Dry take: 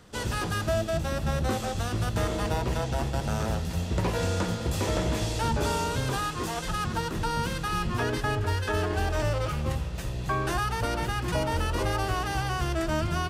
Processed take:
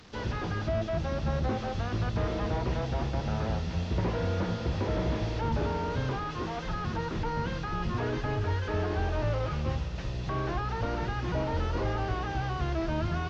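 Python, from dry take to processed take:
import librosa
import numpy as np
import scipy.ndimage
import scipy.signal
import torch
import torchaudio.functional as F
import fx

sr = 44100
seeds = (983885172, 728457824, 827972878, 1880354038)

y = fx.delta_mod(x, sr, bps=32000, step_db=-45.0)
y = y * librosa.db_to_amplitude(-1.5)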